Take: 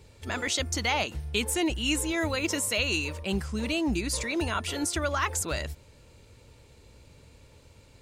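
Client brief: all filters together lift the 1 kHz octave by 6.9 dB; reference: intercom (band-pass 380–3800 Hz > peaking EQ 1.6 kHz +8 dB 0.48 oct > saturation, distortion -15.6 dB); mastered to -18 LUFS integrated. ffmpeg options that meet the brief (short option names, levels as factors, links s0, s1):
-af "highpass=380,lowpass=3800,equalizer=f=1000:t=o:g=7,equalizer=f=1600:t=o:w=0.48:g=8,asoftclip=threshold=0.141,volume=3.55"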